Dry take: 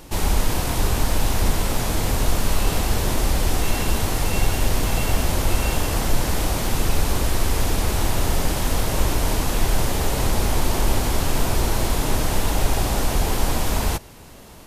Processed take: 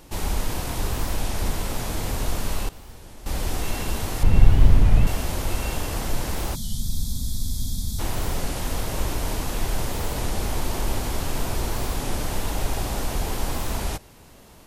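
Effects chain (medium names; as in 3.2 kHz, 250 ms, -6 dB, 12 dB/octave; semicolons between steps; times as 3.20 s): 2.35–3.60 s: dip -16.5 dB, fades 0.34 s logarithmic; 4.23–5.07 s: tone controls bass +13 dB, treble -10 dB; 6.56–7.99 s: time-frequency box 260–3200 Hz -24 dB; warped record 33 1/3 rpm, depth 160 cents; trim -5.5 dB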